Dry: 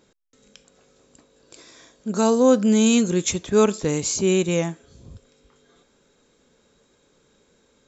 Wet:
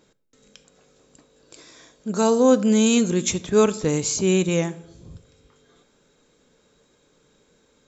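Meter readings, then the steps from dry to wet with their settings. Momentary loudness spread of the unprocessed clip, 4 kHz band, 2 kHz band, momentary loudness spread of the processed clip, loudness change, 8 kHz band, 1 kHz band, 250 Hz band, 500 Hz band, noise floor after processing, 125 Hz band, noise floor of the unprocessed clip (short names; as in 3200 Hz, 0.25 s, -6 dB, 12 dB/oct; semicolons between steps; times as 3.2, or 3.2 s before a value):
9 LU, 0.0 dB, 0.0 dB, 9 LU, 0.0 dB, n/a, 0.0 dB, -0.5 dB, 0.0 dB, -63 dBFS, +1.0 dB, -63 dBFS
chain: shoebox room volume 2400 m³, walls furnished, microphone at 0.49 m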